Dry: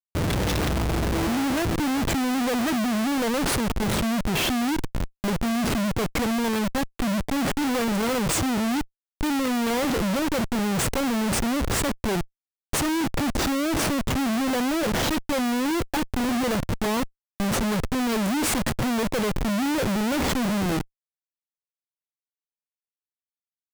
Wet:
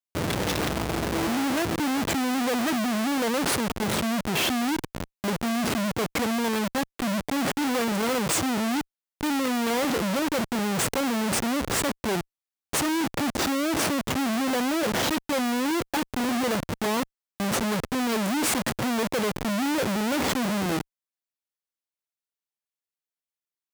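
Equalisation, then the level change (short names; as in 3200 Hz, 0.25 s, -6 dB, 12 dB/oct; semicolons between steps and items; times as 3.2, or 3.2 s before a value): HPF 110 Hz 6 dB/oct; low shelf 140 Hz -5 dB; 0.0 dB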